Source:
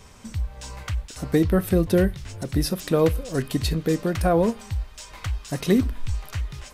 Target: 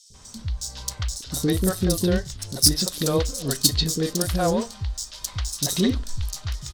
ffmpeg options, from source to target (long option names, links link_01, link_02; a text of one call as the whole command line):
ffmpeg -i in.wav -filter_complex "[0:a]adynamicsmooth=sensitivity=7.5:basefreq=3100,aexciter=amount=8.8:drive=5.5:freq=3600,acrossover=split=410|4100[link_01][link_02][link_03];[link_01]adelay=100[link_04];[link_02]adelay=140[link_05];[link_04][link_05][link_03]amix=inputs=3:normalize=0,volume=-1dB" out.wav